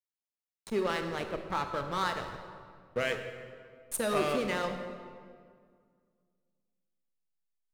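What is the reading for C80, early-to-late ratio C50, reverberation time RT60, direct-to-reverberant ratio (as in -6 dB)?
8.5 dB, 7.5 dB, 2.0 s, 6.5 dB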